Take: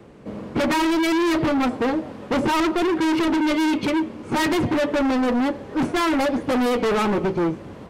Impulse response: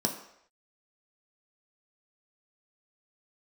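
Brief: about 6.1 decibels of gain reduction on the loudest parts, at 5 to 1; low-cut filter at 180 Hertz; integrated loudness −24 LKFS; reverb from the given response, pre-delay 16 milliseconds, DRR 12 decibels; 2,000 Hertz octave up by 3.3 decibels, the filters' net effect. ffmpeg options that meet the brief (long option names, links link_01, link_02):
-filter_complex "[0:a]highpass=180,equalizer=frequency=2000:width_type=o:gain=4,acompressor=threshold=-23dB:ratio=5,asplit=2[link_01][link_02];[1:a]atrim=start_sample=2205,adelay=16[link_03];[link_02][link_03]afir=irnorm=-1:irlink=0,volume=-18.5dB[link_04];[link_01][link_04]amix=inputs=2:normalize=0,volume=2dB"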